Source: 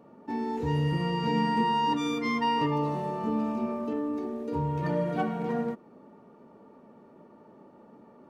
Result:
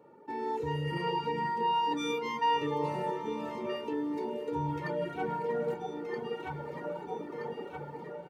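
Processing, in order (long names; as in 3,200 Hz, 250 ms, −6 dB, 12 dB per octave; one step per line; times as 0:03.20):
automatic gain control gain up to 16.5 dB
on a send: delay that swaps between a low-pass and a high-pass 637 ms, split 830 Hz, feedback 70%, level −12 dB
on the sum: reverb reduction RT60 1.9 s
reversed playback
downward compressor 6 to 1, threshold −27 dBFS, peak gain reduction 16 dB
reversed playback
high-pass filter 120 Hz 12 dB per octave
parametric band 5,200 Hz −2 dB
comb filter 2.2 ms, depth 66%
feedback delay with all-pass diffusion 509 ms, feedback 53%, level −12.5 dB
level −4.5 dB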